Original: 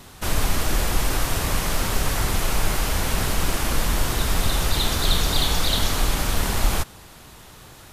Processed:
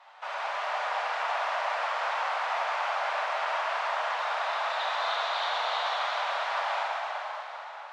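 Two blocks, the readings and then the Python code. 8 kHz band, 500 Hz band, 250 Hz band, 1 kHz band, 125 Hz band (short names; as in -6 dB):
-24.5 dB, -3.0 dB, under -40 dB, +2.5 dB, under -40 dB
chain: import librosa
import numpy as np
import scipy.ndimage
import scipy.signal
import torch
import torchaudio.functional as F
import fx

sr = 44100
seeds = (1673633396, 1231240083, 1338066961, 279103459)

y = scipy.signal.sosfilt(scipy.signal.butter(8, 640.0, 'highpass', fs=sr, output='sos'), x)
y = fx.spacing_loss(y, sr, db_at_10k=44)
y = fx.rev_plate(y, sr, seeds[0], rt60_s=4.5, hf_ratio=0.85, predelay_ms=0, drr_db=-6.0)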